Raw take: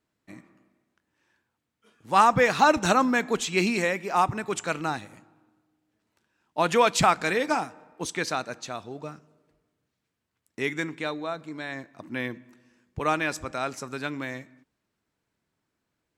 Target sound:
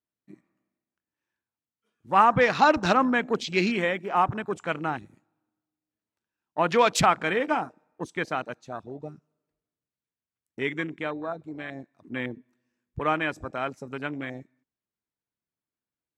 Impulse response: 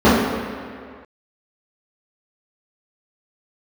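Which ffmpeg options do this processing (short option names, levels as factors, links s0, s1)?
-af "afwtdn=0.02"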